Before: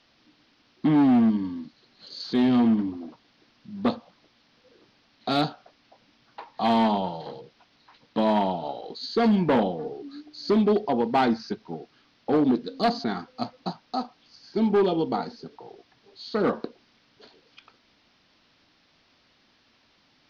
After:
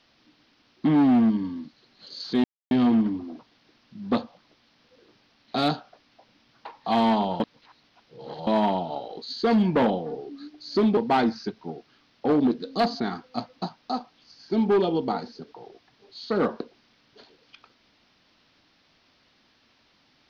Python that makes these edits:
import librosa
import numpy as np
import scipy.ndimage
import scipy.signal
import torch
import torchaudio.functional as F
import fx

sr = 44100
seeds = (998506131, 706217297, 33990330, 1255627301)

y = fx.edit(x, sr, fx.insert_silence(at_s=2.44, length_s=0.27),
    fx.reverse_span(start_s=7.13, length_s=1.07),
    fx.cut(start_s=10.7, length_s=0.31), tone=tone)